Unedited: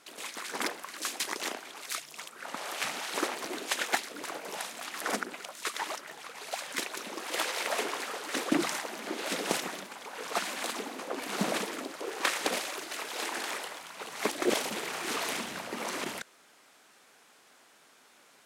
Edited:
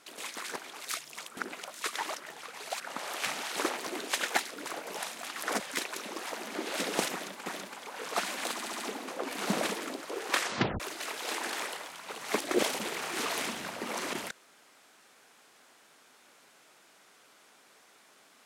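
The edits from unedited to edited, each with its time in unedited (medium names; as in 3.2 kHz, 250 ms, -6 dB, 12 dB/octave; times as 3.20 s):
0.56–1.57 s: delete
5.18–6.61 s: move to 2.38 s
7.30–8.81 s: delete
9.65–9.98 s: loop, 2 plays
10.71 s: stutter 0.07 s, 5 plays
12.30 s: tape stop 0.41 s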